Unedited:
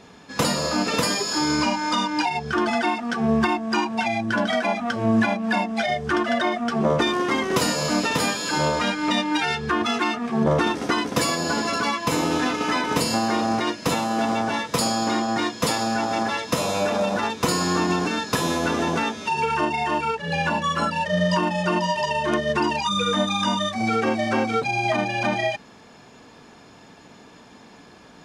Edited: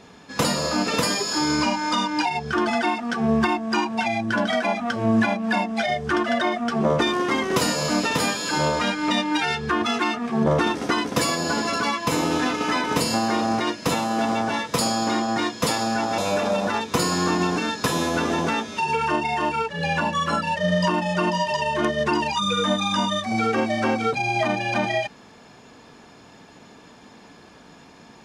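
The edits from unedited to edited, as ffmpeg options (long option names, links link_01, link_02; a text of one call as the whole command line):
ffmpeg -i in.wav -filter_complex "[0:a]asplit=2[link_01][link_02];[link_01]atrim=end=16.182[link_03];[link_02]atrim=start=16.668[link_04];[link_03][link_04]acrossfade=duration=0.004:curve1=hsin:curve2=hsin" out.wav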